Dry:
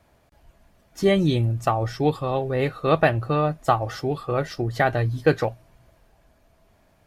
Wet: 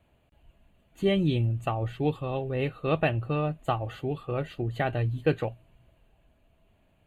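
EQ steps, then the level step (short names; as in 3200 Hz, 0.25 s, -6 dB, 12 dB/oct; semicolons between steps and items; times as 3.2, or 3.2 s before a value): Butterworth band-stop 5400 Hz, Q 2.6; tilt shelf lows +4.5 dB, about 650 Hz; bell 2800 Hz +13 dB 0.5 oct; -8.0 dB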